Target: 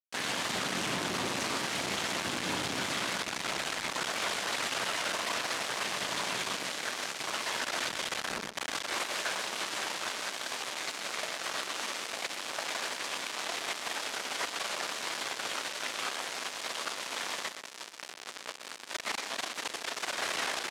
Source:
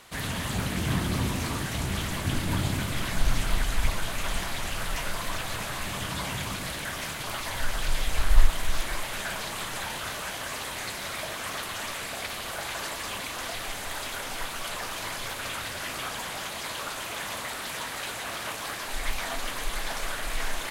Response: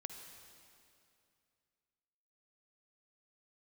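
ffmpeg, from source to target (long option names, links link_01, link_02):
-filter_complex "[0:a]acompressor=threshold=-27dB:ratio=2.5,asplit=3[link_01][link_02][link_03];[link_01]afade=type=out:start_time=17.48:duration=0.02[link_04];[link_02]flanger=delay=15.5:depth=2.5:speed=2.7,afade=type=in:start_time=17.48:duration=0.02,afade=type=out:start_time=20.14:duration=0.02[link_05];[link_03]afade=type=in:start_time=20.14:duration=0.02[link_06];[link_04][link_05][link_06]amix=inputs=3:normalize=0,acrusher=bits=4:mix=0:aa=0.000001,highpass=290,lowpass=6900,aecho=1:1:124:0.299"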